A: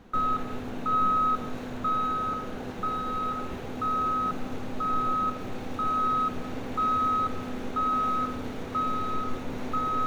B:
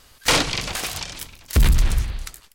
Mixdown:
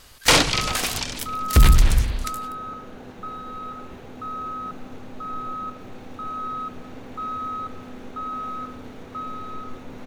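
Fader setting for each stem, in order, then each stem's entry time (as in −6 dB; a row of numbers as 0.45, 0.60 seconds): −4.5, +2.5 decibels; 0.40, 0.00 seconds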